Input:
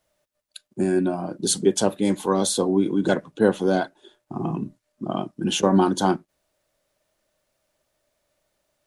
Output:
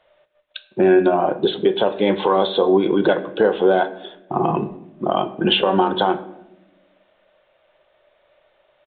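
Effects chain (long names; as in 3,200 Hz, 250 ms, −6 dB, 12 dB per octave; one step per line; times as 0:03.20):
low shelf with overshoot 350 Hz −9.5 dB, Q 1.5
downward compressor 10 to 1, threshold −25 dBFS, peak gain reduction 12.5 dB
on a send at −11 dB: convolution reverb RT60 0.90 s, pre-delay 5 ms
on the sum: downsampling to 8,000 Hz
boost into a limiter +18 dB
level −4.5 dB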